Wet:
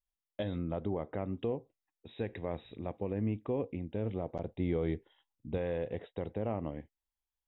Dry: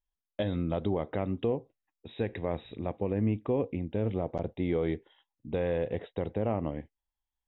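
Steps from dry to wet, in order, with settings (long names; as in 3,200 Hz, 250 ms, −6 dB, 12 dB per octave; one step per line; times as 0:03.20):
0:00.58–0:01.33: low-pass filter 2,300 Hz 12 dB per octave
0:04.53–0:05.58: low-shelf EQ 180 Hz +7 dB
level −5 dB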